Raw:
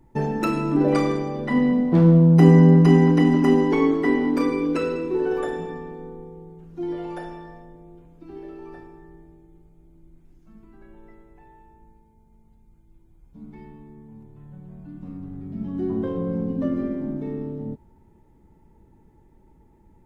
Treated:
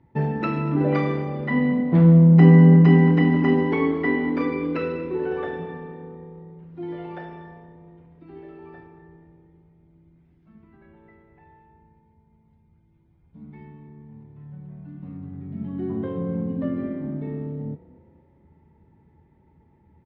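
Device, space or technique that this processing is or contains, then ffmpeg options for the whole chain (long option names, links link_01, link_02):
frequency-shifting delay pedal into a guitar cabinet: -filter_complex "[0:a]asplit=5[link_01][link_02][link_03][link_04][link_05];[link_02]adelay=237,afreqshift=33,volume=-21dB[link_06];[link_03]adelay=474,afreqshift=66,volume=-27.2dB[link_07];[link_04]adelay=711,afreqshift=99,volume=-33.4dB[link_08];[link_05]adelay=948,afreqshift=132,volume=-39.6dB[link_09];[link_01][link_06][link_07][link_08][link_09]amix=inputs=5:normalize=0,highpass=79,equalizer=frequency=81:width_type=q:width=4:gain=10,equalizer=frequency=150:width_type=q:width=4:gain=6,equalizer=frequency=330:width_type=q:width=4:gain=-3,equalizer=frequency=2000:width_type=q:width=4:gain=5,lowpass=frequency=3800:width=0.5412,lowpass=frequency=3800:width=1.3066,volume=-2dB"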